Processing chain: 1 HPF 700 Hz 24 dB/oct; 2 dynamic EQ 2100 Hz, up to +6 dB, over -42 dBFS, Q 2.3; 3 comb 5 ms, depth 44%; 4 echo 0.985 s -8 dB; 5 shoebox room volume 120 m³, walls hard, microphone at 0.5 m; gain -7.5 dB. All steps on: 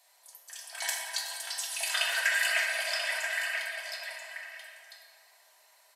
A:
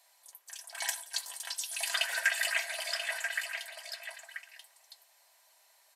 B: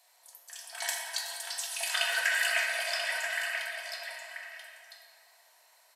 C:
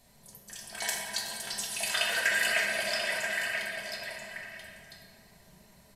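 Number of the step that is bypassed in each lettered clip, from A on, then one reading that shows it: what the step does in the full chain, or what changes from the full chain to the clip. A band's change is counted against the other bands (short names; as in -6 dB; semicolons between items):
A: 5, echo-to-direct 3.0 dB to -8.0 dB; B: 3, 500 Hz band +1.5 dB; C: 1, 500 Hz band +5.0 dB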